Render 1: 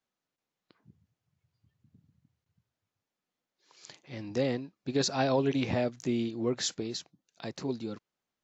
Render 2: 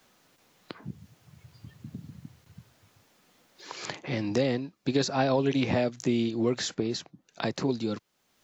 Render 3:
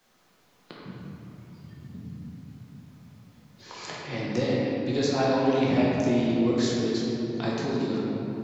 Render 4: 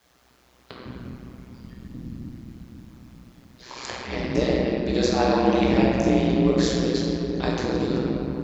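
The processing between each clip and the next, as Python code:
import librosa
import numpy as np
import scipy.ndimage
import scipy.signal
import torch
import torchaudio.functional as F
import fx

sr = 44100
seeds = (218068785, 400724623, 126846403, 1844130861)

y1 = fx.band_squash(x, sr, depth_pct=70)
y1 = y1 * 10.0 ** (4.0 / 20.0)
y2 = fx.room_shoebox(y1, sr, seeds[0], volume_m3=200.0, walls='hard', distance_m=0.93)
y2 = y2 * 10.0 ** (-5.0 / 20.0)
y3 = y2 * np.sin(2.0 * np.pi * 62.0 * np.arange(len(y2)) / sr)
y3 = y3 * 10.0 ** (6.5 / 20.0)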